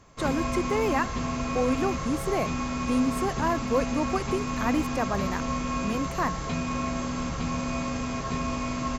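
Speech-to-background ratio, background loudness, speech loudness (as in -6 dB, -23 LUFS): 1.0 dB, -30.5 LUFS, -29.5 LUFS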